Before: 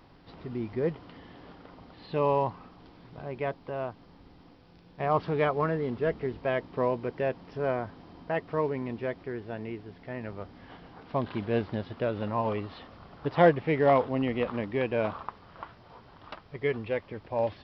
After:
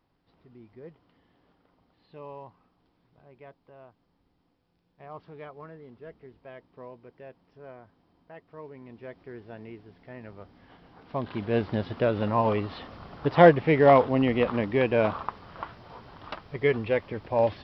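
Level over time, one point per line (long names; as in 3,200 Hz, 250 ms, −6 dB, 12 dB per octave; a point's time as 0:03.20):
0:08.47 −17 dB
0:09.37 −6 dB
0:10.78 −6 dB
0:11.83 +5 dB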